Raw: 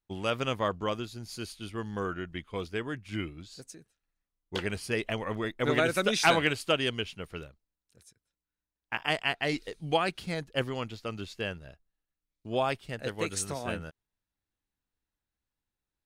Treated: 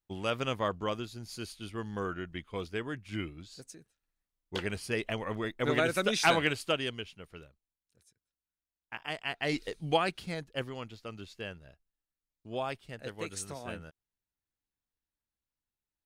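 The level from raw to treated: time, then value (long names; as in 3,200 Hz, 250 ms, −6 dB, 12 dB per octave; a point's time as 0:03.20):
0:06.61 −2 dB
0:07.14 −8.5 dB
0:09.19 −8.5 dB
0:09.64 +2 dB
0:10.71 −6.5 dB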